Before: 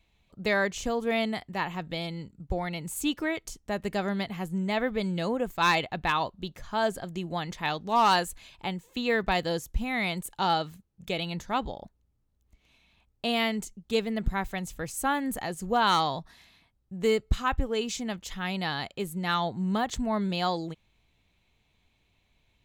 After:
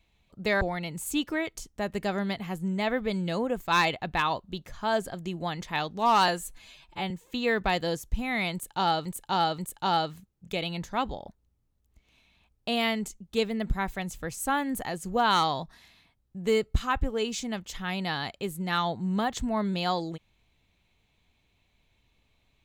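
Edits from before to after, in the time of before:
0.61–2.51 s: delete
8.18–8.73 s: stretch 1.5×
10.15–10.68 s: loop, 3 plays

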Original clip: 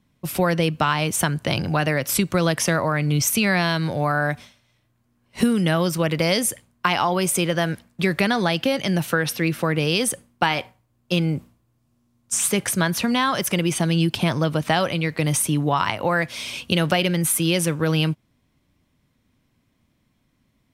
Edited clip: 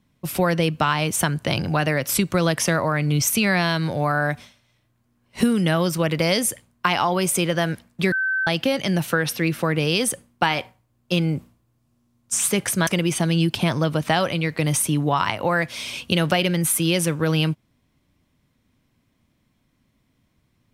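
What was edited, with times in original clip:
8.12–8.47 s: bleep 1.54 kHz -19.5 dBFS
12.87–13.47 s: delete

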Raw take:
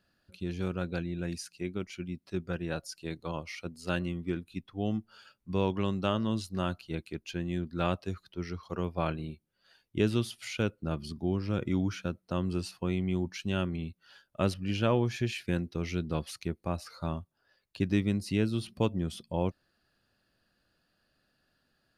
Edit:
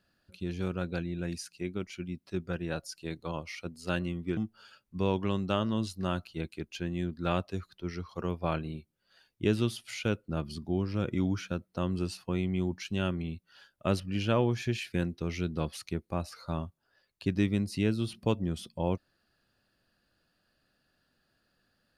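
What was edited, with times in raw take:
4.37–4.91 s: delete

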